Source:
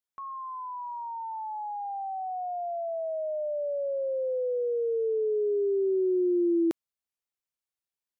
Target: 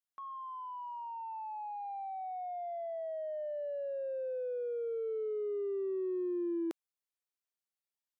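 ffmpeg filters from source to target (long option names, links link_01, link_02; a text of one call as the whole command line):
ffmpeg -i in.wav -filter_complex "[0:a]highpass=frequency=420:poles=1,asplit=2[link_01][link_02];[link_02]asoftclip=type=tanh:threshold=-36.5dB,volume=-10dB[link_03];[link_01][link_03]amix=inputs=2:normalize=0,volume=-7dB" out.wav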